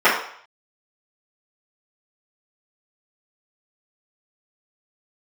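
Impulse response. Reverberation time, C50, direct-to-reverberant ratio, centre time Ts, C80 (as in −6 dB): 0.60 s, 4.5 dB, −14.5 dB, 39 ms, 8.5 dB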